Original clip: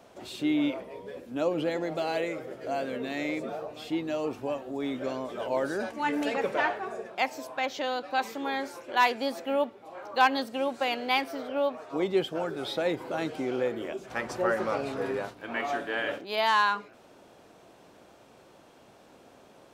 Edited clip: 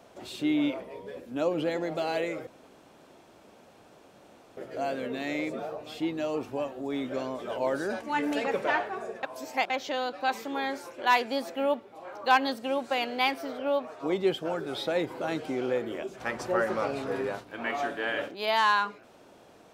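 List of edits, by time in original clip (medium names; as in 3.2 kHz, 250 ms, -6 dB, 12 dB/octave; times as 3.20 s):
2.47 s: insert room tone 2.10 s
7.13–7.60 s: reverse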